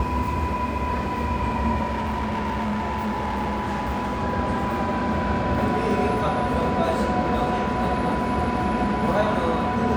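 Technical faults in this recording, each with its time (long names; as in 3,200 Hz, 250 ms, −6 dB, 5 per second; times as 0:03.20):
whistle 990 Hz −28 dBFS
0:01.85–0:04.23: clipping −22.5 dBFS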